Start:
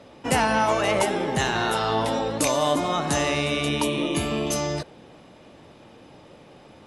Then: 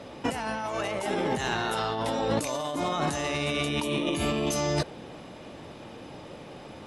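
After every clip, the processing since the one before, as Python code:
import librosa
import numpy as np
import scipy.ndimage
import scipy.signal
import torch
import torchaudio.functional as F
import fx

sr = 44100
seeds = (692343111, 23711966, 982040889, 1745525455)

y = fx.over_compress(x, sr, threshold_db=-29.0, ratio=-1.0)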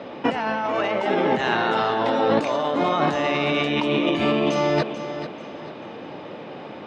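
y = fx.bandpass_edges(x, sr, low_hz=190.0, high_hz=3600.0)
y = fx.air_absorb(y, sr, metres=80.0)
y = fx.echo_feedback(y, sr, ms=439, feedback_pct=33, wet_db=-11.0)
y = y * 10.0 ** (8.0 / 20.0)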